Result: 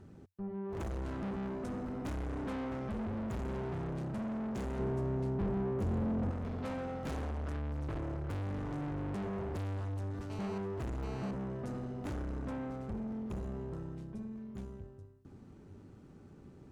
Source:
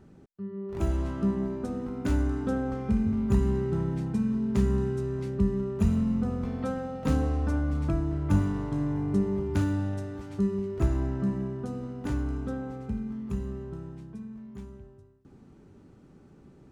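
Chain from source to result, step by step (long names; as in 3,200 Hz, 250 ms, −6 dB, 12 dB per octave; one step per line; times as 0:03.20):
parametric band 93 Hz +7.5 dB 0.33 octaves
tube saturation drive 37 dB, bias 0.55
0:04.79–0:06.31: tilt shelving filter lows +5 dB, about 1,100 Hz
0:10.30–0:11.31: phone interference −50 dBFS
level +1 dB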